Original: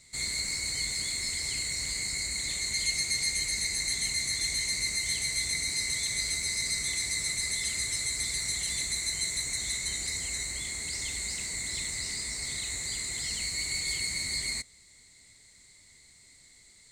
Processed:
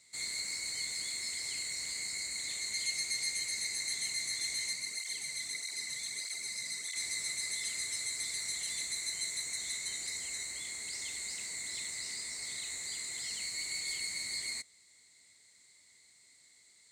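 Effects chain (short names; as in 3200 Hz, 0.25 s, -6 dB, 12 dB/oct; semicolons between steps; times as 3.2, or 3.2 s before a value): HPF 410 Hz 6 dB/oct; 4.73–6.96 tape flanging out of phase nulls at 1.6 Hz, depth 3.2 ms; gain -5.5 dB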